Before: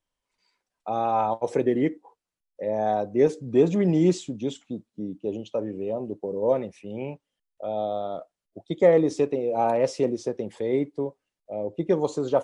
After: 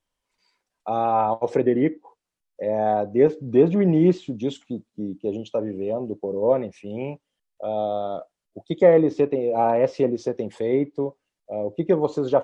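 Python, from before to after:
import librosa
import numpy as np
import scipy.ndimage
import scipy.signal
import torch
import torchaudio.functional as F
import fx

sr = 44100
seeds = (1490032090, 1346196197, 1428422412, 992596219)

y = fx.env_lowpass_down(x, sr, base_hz=2600.0, full_db=-19.5)
y = y * librosa.db_to_amplitude(3.0)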